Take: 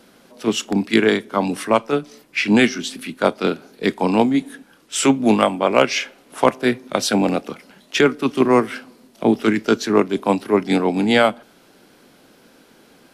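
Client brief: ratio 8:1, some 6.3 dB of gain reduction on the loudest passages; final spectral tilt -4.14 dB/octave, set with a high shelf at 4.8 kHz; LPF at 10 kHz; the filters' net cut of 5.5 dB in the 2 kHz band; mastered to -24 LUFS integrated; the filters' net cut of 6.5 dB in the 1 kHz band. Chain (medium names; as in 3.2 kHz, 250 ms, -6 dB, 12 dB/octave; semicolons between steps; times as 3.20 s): low-pass 10 kHz; peaking EQ 1 kHz -7.5 dB; peaking EQ 2 kHz -5.5 dB; treble shelf 4.8 kHz +3.5 dB; compression 8:1, threshold -17 dBFS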